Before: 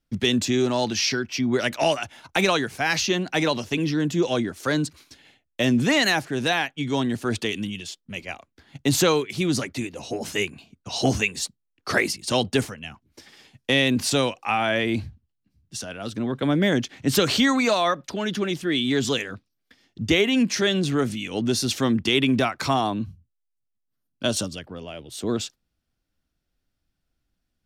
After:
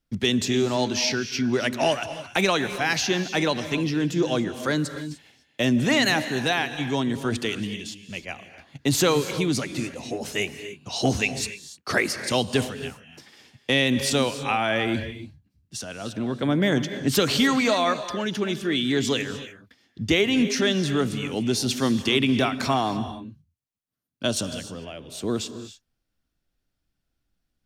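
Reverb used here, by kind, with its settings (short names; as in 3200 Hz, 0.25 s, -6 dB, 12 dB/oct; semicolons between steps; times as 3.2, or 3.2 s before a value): non-linear reverb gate 0.32 s rising, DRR 11 dB; gain -1 dB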